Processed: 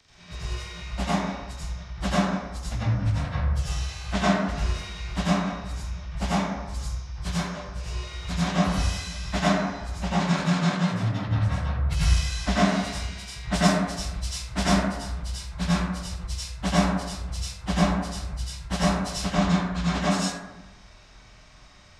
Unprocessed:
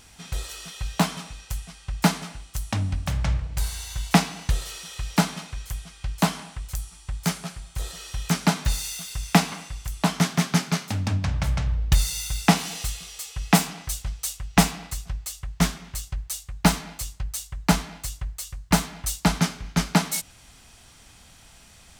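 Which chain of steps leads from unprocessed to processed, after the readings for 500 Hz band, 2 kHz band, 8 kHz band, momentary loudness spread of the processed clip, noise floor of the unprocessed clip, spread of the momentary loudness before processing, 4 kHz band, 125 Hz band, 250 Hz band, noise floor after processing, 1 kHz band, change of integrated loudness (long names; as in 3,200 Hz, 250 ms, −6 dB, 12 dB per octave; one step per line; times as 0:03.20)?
+3.0 dB, −1.0 dB, −6.5 dB, 11 LU, −51 dBFS, 13 LU, −2.0 dB, 0.0 dB, +0.5 dB, −50 dBFS, 0.0 dB, −0.5 dB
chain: partials spread apart or drawn together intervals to 87%
dense smooth reverb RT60 1.1 s, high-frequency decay 0.3×, pre-delay 75 ms, DRR −9.5 dB
level −8 dB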